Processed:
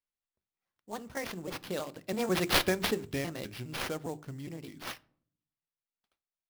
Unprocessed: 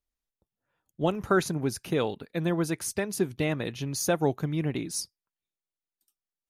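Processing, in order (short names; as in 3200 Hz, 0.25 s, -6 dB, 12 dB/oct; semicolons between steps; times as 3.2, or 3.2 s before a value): trilling pitch shifter +3.5 st, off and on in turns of 0.184 s; Doppler pass-by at 2.57, 39 m/s, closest 8.2 m; high shelf 6500 Hz +11 dB; notches 50/100/150/200/250/300/350/400 Hz; in parallel at +1 dB: compressor, threshold -41 dBFS, peak gain reduction 17.5 dB; on the sum: sample-rate reducer 7700 Hz, jitter 20%; on a send at -18 dB: reverb RT60 0.55 s, pre-delay 3 ms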